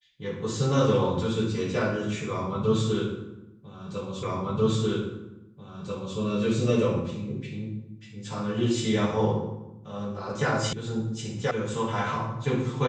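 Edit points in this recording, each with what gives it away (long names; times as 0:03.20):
0:04.23: the same again, the last 1.94 s
0:10.73: cut off before it has died away
0:11.51: cut off before it has died away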